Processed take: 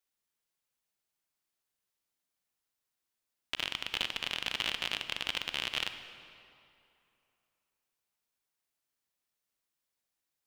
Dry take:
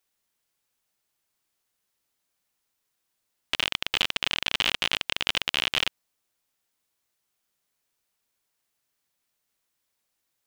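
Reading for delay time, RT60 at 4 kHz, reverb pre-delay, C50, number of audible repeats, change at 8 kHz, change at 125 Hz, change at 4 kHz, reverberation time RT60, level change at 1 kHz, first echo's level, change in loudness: no echo audible, 1.9 s, 31 ms, 9.5 dB, no echo audible, −8.0 dB, −8.0 dB, −8.0 dB, 2.7 s, −8.0 dB, no echo audible, −8.0 dB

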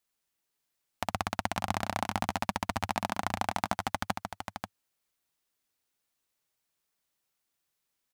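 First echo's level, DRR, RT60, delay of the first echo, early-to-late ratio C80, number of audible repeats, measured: −7.0 dB, no reverb audible, no reverb audible, 536 ms, no reverb audible, 1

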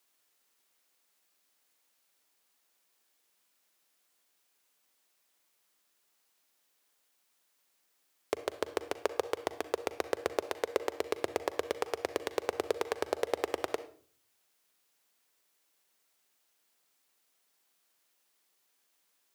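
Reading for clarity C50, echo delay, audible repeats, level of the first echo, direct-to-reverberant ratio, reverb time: 13.5 dB, no echo audible, no echo audible, no echo audible, 12.0 dB, 0.45 s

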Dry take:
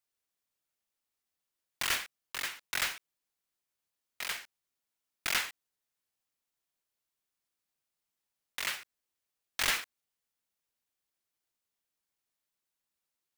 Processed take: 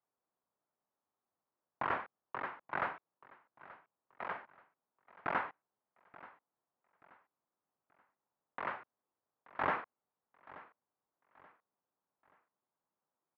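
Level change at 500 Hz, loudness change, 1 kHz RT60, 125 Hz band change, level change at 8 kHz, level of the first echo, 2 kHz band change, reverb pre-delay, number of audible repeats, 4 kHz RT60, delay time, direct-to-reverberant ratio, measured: +6.5 dB, −6.0 dB, no reverb audible, +1.5 dB, below −40 dB, −19.5 dB, −6.5 dB, no reverb audible, 2, no reverb audible, 880 ms, no reverb audible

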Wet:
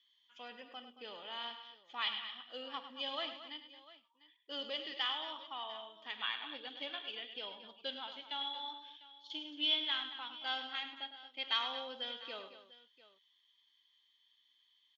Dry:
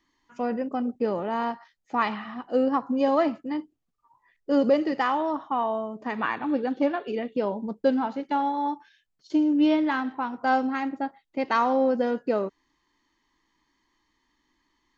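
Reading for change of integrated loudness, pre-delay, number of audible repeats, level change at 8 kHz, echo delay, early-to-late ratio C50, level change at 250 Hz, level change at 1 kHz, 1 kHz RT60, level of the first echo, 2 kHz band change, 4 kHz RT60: −13.5 dB, no reverb audible, 4, can't be measured, 51 ms, no reverb audible, −29.5 dB, −18.0 dB, no reverb audible, −17.5 dB, −10.0 dB, no reverb audible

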